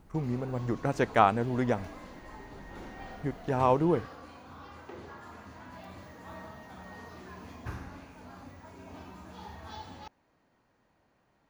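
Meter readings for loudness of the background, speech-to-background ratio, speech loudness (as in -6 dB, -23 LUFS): -46.5 LUFS, 17.5 dB, -29.0 LUFS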